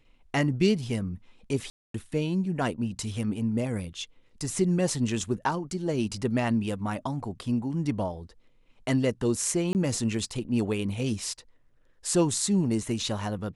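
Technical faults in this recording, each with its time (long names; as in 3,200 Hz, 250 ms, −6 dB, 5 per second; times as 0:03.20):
0:01.70–0:01.94: drop-out 243 ms
0:09.73–0:09.75: drop-out 19 ms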